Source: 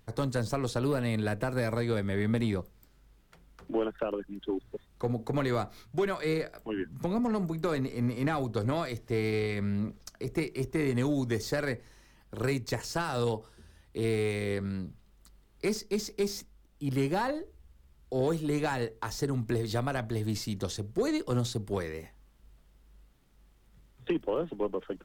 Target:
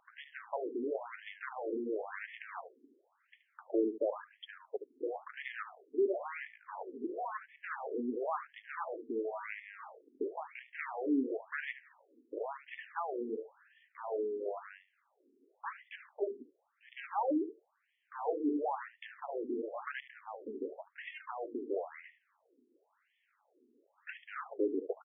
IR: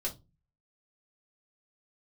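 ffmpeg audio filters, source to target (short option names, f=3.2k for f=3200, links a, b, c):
-af "bass=f=250:g=13,treble=f=4k:g=-12,asoftclip=type=tanh:threshold=-29dB,aecho=1:1:74:0.224,afftfilt=real='re*between(b*sr/1024,320*pow(2500/320,0.5+0.5*sin(2*PI*0.96*pts/sr))/1.41,320*pow(2500/320,0.5+0.5*sin(2*PI*0.96*pts/sr))*1.41)':imag='im*between(b*sr/1024,320*pow(2500/320,0.5+0.5*sin(2*PI*0.96*pts/sr))/1.41,320*pow(2500/320,0.5+0.5*sin(2*PI*0.96*pts/sr))*1.41)':win_size=1024:overlap=0.75,volume=5dB"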